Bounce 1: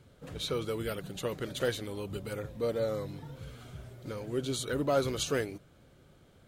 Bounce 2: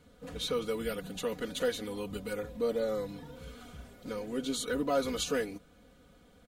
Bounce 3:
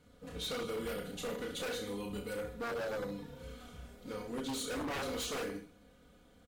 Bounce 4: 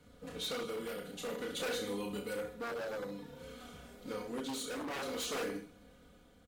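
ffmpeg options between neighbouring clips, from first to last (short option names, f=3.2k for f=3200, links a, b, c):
-filter_complex "[0:a]aecho=1:1:4.1:0.89,asplit=2[a][b];[b]alimiter=limit=-23.5dB:level=0:latency=1:release=146,volume=-2dB[c];[a][c]amix=inputs=2:normalize=0,volume=-6.5dB"
-af "aecho=1:1:30|64.5|104.2|149.8|202.3:0.631|0.398|0.251|0.158|0.1,aeval=exprs='0.0398*(abs(mod(val(0)/0.0398+3,4)-2)-1)':c=same,volume=-4.5dB"
-filter_complex "[0:a]acrossover=split=160|1400[a][b][c];[a]acompressor=threshold=-60dB:ratio=6[d];[d][b][c]amix=inputs=3:normalize=0,tremolo=f=0.52:d=0.42,volume=2.5dB"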